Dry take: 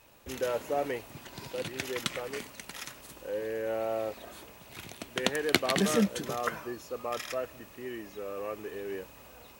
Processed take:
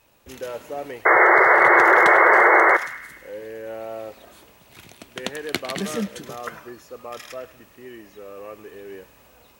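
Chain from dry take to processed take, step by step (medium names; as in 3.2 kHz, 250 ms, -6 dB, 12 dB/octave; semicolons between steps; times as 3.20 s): painted sound noise, 1.05–2.77 s, 330–2200 Hz -13 dBFS; on a send: band-passed feedback delay 103 ms, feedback 60%, band-pass 2.3 kHz, level -13 dB; on the sum: trim -1 dB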